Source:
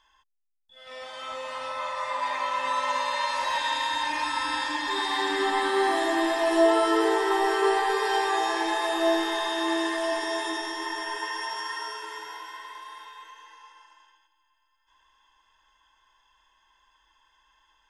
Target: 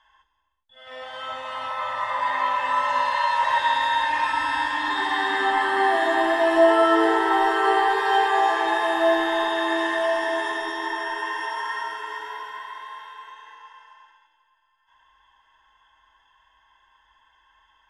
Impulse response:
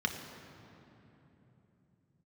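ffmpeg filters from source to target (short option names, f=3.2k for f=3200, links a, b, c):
-filter_complex "[1:a]atrim=start_sample=2205,afade=t=out:st=0.28:d=0.01,atrim=end_sample=12789,asetrate=24696,aresample=44100[a];[0:a][a]afir=irnorm=-1:irlink=0,volume=-6.5dB"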